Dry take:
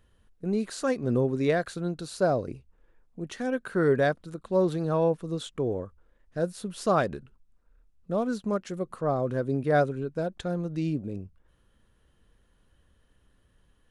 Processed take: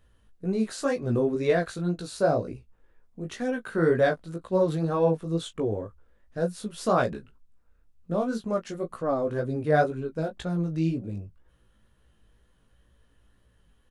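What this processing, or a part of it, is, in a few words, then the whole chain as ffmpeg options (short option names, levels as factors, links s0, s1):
double-tracked vocal: -filter_complex "[0:a]asplit=2[s0][s1];[s1]adelay=18,volume=0.266[s2];[s0][s2]amix=inputs=2:normalize=0,flanger=delay=16:depth=3.6:speed=2,volume=1.5"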